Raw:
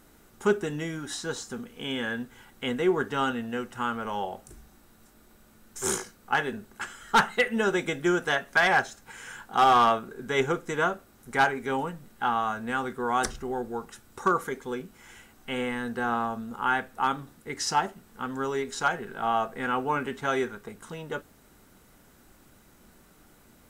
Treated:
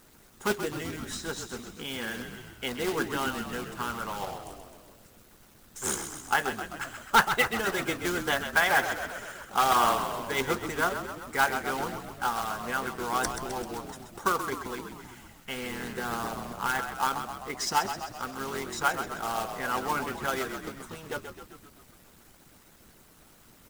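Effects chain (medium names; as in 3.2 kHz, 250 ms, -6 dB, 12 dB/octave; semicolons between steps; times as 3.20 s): companded quantiser 4-bit; frequency-shifting echo 130 ms, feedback 62%, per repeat -40 Hz, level -7.5 dB; harmonic-percussive split harmonic -9 dB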